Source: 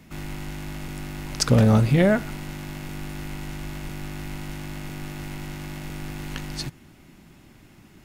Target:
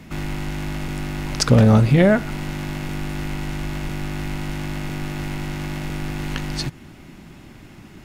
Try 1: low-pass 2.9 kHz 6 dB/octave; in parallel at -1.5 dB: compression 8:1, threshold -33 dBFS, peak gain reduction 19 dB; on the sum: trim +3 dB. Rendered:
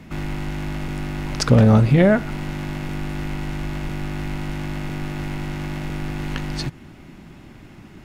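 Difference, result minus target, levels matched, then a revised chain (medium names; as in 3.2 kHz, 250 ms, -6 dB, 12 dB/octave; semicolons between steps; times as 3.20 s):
8 kHz band -4.0 dB
low-pass 6 kHz 6 dB/octave; in parallel at -1.5 dB: compression 8:1, threshold -33 dBFS, peak gain reduction 19.5 dB; on the sum: trim +3 dB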